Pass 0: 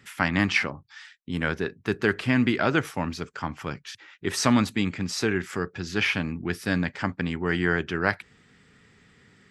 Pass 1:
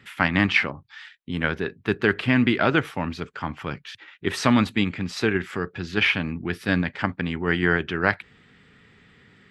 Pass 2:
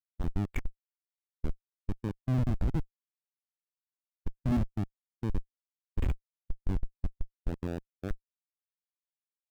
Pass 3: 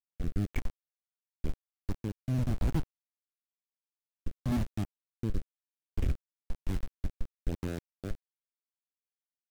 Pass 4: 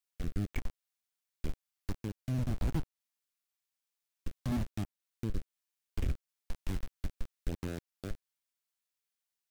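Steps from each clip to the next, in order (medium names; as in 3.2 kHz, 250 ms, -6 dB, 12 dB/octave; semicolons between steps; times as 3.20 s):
resonant high shelf 4.5 kHz -7 dB, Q 1.5; in parallel at -3 dB: level held to a coarse grid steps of 12 dB; on the sum: trim -1 dB
dynamic bell 250 Hz, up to +4 dB, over -35 dBFS, Q 1.3; Schmitt trigger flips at -12.5 dBFS; spectral contrast expander 1.5:1; trim -3 dB
in parallel at -11 dB: saturation -35.5 dBFS, distortion -7 dB; on the sum: bit crusher 7-bit; rotary cabinet horn 1 Hz
tape noise reduction on one side only encoder only; trim -3 dB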